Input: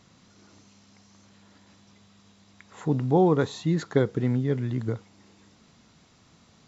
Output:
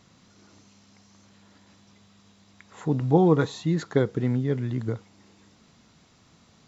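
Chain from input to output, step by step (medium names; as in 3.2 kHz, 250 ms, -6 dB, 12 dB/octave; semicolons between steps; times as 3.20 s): 3.00–3.52 s: comb 6.3 ms, depth 48%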